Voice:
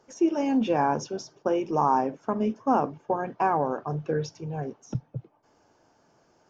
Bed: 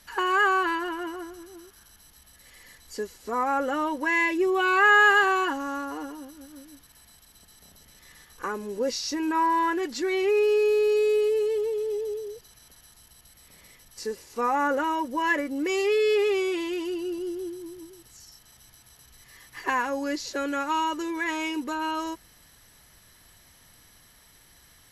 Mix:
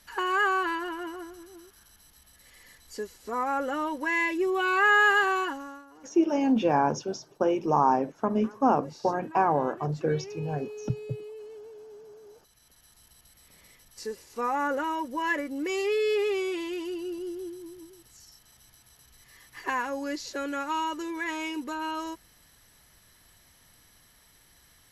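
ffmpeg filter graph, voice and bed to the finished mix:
-filter_complex "[0:a]adelay=5950,volume=0.5dB[a];[1:a]volume=12dB,afade=t=out:st=5.39:d=0.45:silence=0.16788,afade=t=in:st=12.15:d=0.92:silence=0.177828[b];[a][b]amix=inputs=2:normalize=0"

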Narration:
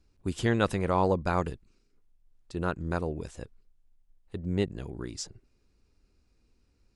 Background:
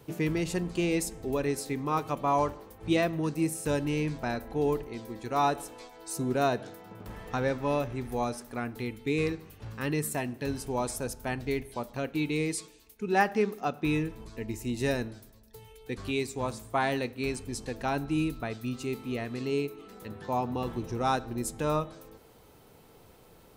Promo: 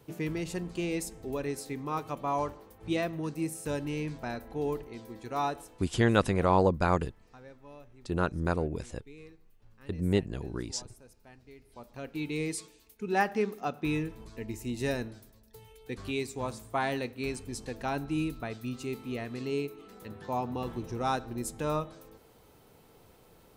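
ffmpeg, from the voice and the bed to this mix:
-filter_complex "[0:a]adelay=5550,volume=1.5dB[a];[1:a]volume=15dB,afade=t=out:st=5.41:d=0.62:silence=0.133352,afade=t=in:st=11.6:d=0.88:silence=0.105925[b];[a][b]amix=inputs=2:normalize=0"

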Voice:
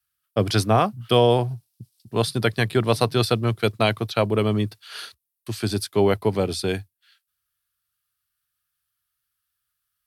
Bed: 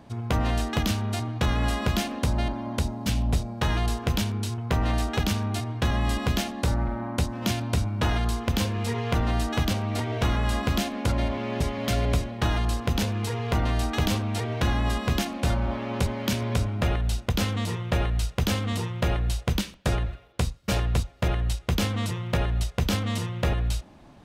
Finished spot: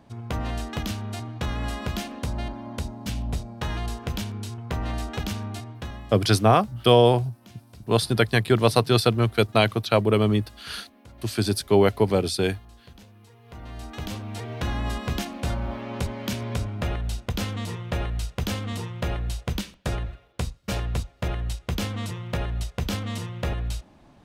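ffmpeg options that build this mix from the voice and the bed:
-filter_complex "[0:a]adelay=5750,volume=1dB[a];[1:a]volume=16dB,afade=t=out:st=5.44:d=0.73:silence=0.112202,afade=t=in:st=13.42:d=1.39:silence=0.0944061[b];[a][b]amix=inputs=2:normalize=0"

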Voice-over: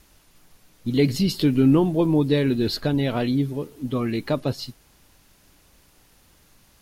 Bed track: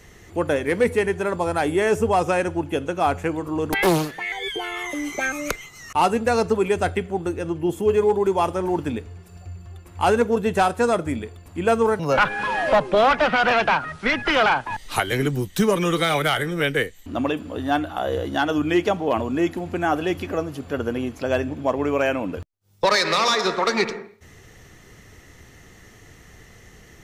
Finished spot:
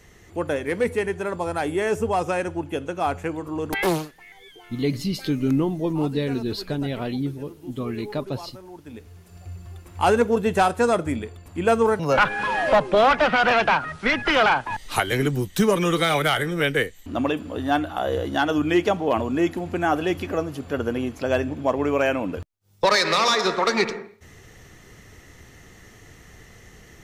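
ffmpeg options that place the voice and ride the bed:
-filter_complex "[0:a]adelay=3850,volume=-4.5dB[a];[1:a]volume=15.5dB,afade=t=out:st=3.92:d=0.22:silence=0.16788,afade=t=in:st=8.83:d=0.74:silence=0.112202[b];[a][b]amix=inputs=2:normalize=0"

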